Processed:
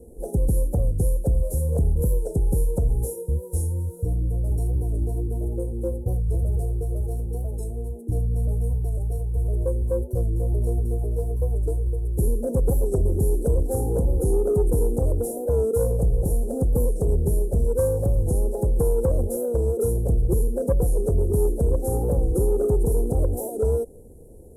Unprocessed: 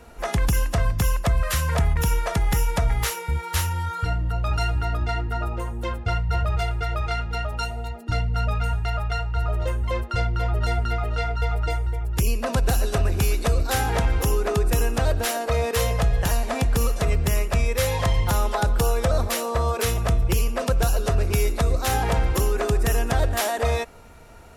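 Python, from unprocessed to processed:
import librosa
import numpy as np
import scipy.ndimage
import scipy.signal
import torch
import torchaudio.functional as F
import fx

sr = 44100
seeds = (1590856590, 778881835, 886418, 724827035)

y = fx.cvsd(x, sr, bps=64000)
y = scipy.signal.sosfilt(scipy.signal.cheby1(3, 1.0, [380.0, 9500.0], 'bandstop', fs=sr, output='sos'), y)
y = fx.small_body(y, sr, hz=(530.0, 780.0, 2000.0, 2800.0), ring_ms=25, db=15)
y = 10.0 ** (-12.5 / 20.0) * np.tanh(y / 10.0 ** (-12.5 / 20.0))
y = fx.record_warp(y, sr, rpm=45.0, depth_cents=100.0)
y = y * 10.0 ** (1.5 / 20.0)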